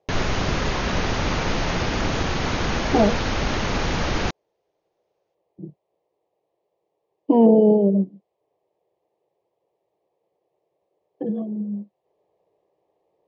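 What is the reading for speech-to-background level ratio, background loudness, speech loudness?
5.0 dB, -24.5 LUFS, -19.5 LUFS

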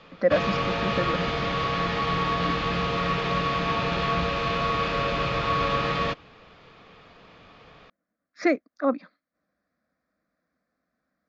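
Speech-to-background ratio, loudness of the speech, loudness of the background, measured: -2.5 dB, -28.0 LUFS, -25.5 LUFS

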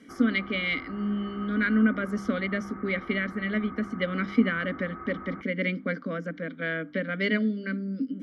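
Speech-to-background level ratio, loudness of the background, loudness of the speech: 14.5 dB, -43.0 LUFS, -28.5 LUFS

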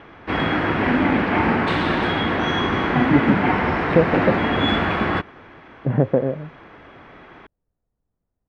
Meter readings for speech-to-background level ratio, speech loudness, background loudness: -3.5 dB, -23.5 LUFS, -20.0 LUFS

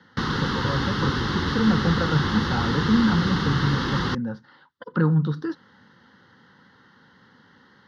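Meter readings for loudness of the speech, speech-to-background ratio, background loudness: -25.5 LUFS, 0.0 dB, -25.5 LUFS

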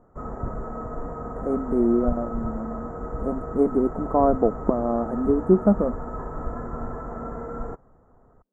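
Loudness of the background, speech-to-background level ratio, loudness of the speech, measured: -34.0 LUFS, 10.5 dB, -23.5 LUFS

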